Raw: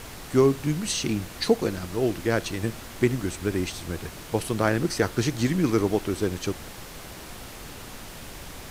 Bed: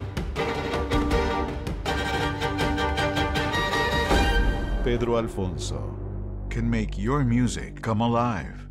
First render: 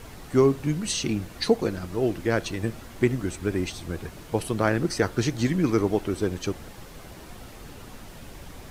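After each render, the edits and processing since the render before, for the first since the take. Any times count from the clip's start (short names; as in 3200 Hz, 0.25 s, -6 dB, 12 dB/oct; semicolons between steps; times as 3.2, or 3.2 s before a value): denoiser 7 dB, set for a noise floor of -41 dBFS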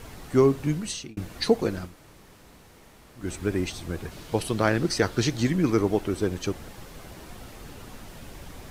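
0.72–1.17 fade out; 1.88–3.23 room tone, crossfade 0.16 s; 4.11–5.4 bell 4100 Hz +5 dB 1.2 oct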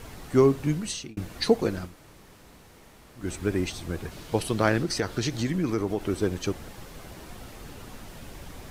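4.81–6.01 compressor 2:1, threshold -25 dBFS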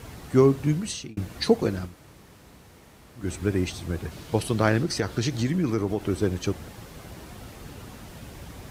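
HPF 69 Hz; low shelf 130 Hz +8 dB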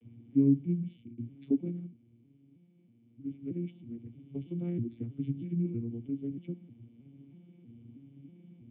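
arpeggiated vocoder minor triad, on A#2, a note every 0.318 s; vocal tract filter i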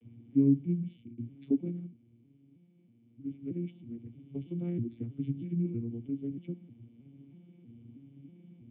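nothing audible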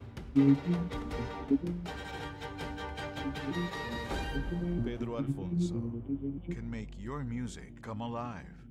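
add bed -15 dB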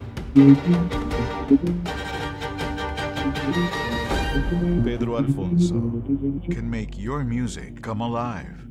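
gain +12 dB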